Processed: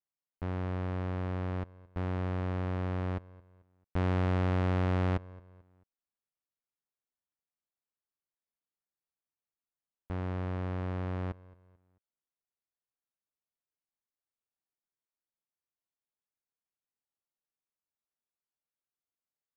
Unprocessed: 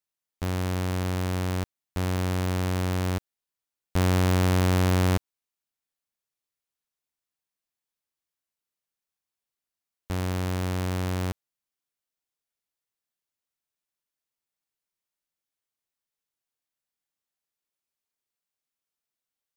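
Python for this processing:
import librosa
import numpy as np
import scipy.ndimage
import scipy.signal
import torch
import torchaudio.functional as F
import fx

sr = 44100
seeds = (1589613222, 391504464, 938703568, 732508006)

p1 = scipy.signal.sosfilt(scipy.signal.butter(2, 1500.0, 'lowpass', fs=sr, output='sos'), x)
p2 = p1 + fx.echo_feedback(p1, sr, ms=220, feedback_pct=37, wet_db=-21.0, dry=0)
p3 = fx.doppler_dist(p2, sr, depth_ms=0.4)
y = p3 * 10.0 ** (-6.0 / 20.0)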